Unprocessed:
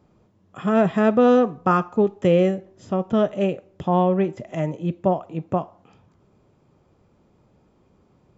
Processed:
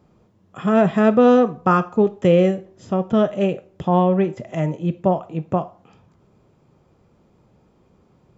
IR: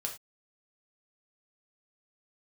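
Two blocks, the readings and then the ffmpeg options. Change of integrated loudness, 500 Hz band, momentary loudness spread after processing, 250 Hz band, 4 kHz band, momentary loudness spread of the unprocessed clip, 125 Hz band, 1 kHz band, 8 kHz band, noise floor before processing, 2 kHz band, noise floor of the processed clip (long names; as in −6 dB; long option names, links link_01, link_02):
+2.5 dB, +2.0 dB, 11 LU, +2.5 dB, +2.0 dB, 11 LU, +3.0 dB, +2.0 dB, can't be measured, −61 dBFS, +2.0 dB, −59 dBFS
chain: -filter_complex "[0:a]asplit=2[link_01][link_02];[1:a]atrim=start_sample=2205[link_03];[link_02][link_03]afir=irnorm=-1:irlink=0,volume=-10dB[link_04];[link_01][link_04]amix=inputs=2:normalize=0"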